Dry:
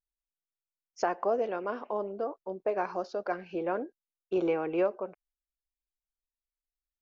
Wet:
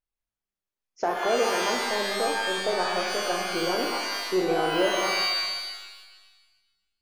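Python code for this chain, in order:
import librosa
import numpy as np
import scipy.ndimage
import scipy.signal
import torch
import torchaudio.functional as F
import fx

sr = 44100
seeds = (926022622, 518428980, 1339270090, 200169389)

p1 = fx.high_shelf(x, sr, hz=3500.0, db=-10.0)
p2 = np.clip(10.0 ** (32.5 / 20.0) * p1, -1.0, 1.0) / 10.0 ** (32.5 / 20.0)
p3 = p1 + (p2 * librosa.db_to_amplitude(-5.0))
y = fx.rev_shimmer(p3, sr, seeds[0], rt60_s=1.3, semitones=12, shimmer_db=-2, drr_db=1.5)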